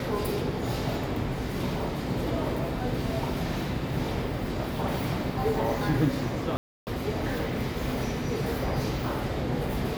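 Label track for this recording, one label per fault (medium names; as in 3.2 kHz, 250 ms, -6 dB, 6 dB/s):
6.570000	6.870000	dropout 299 ms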